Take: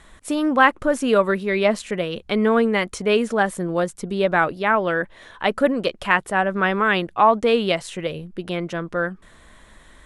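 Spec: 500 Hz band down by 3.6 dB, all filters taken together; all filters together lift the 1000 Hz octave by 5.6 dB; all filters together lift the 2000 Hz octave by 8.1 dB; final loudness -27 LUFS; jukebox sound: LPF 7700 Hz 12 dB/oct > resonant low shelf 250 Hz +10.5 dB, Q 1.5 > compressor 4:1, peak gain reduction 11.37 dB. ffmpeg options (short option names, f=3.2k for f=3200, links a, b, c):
-af "lowpass=7.7k,lowshelf=f=250:t=q:w=1.5:g=10.5,equalizer=f=500:t=o:g=-4.5,equalizer=f=1k:t=o:g=6.5,equalizer=f=2k:t=o:g=8.5,acompressor=threshold=-15dB:ratio=4,volume=-7dB"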